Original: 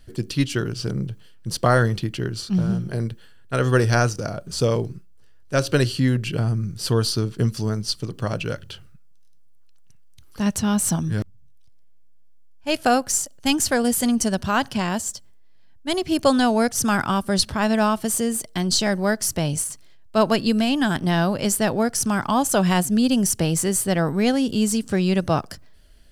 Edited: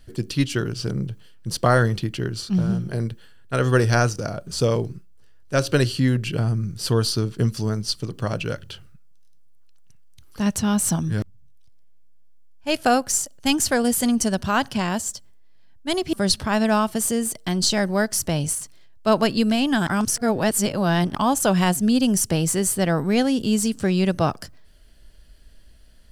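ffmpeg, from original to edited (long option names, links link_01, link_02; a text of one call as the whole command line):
ffmpeg -i in.wav -filter_complex "[0:a]asplit=4[link_01][link_02][link_03][link_04];[link_01]atrim=end=16.132[link_05];[link_02]atrim=start=17.218:end=20.962[link_06];[link_03]atrim=start=20.958:end=22.242,asetpts=PTS-STARTPTS,areverse[link_07];[link_04]atrim=start=22.238[link_08];[link_05][link_06]acrossfade=duration=0.004:curve1=hsin:curve2=hsin[link_09];[link_09][link_07]acrossfade=duration=0.004:curve1=hsin:curve2=hsin[link_10];[link_10][link_08]acrossfade=duration=0.004:curve1=hsin:curve2=hsin" out.wav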